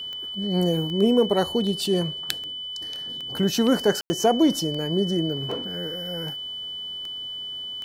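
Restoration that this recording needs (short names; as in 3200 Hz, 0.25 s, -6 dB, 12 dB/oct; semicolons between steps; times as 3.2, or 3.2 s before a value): de-click; notch 3000 Hz, Q 30; room tone fill 4.01–4.1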